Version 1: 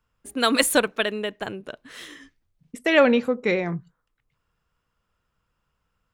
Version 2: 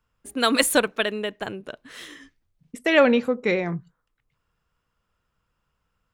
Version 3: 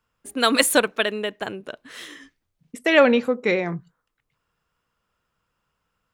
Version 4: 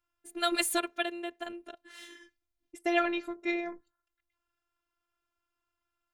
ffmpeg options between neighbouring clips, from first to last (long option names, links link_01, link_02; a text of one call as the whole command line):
ffmpeg -i in.wav -af anull out.wav
ffmpeg -i in.wav -af "lowshelf=frequency=110:gain=-9.5,volume=2dB" out.wav
ffmpeg -i in.wav -af "bandreject=frequency=1100:width=11,afftfilt=real='hypot(re,im)*cos(PI*b)':imag='0':win_size=512:overlap=0.75,volume=-6.5dB" out.wav